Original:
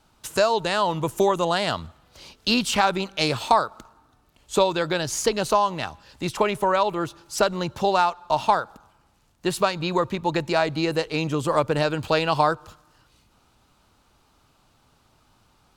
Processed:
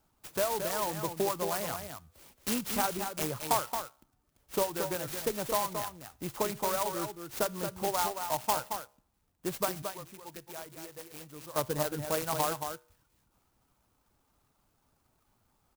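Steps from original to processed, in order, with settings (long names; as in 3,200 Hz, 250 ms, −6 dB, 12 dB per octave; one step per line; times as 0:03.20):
0:09.82–0:11.56: first-order pre-emphasis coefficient 0.8
reverb reduction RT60 0.63 s
tuned comb filter 69 Hz, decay 0.48 s, harmonics all, mix 30%
single-tap delay 224 ms −7 dB
converter with an unsteady clock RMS 0.095 ms
level −7.5 dB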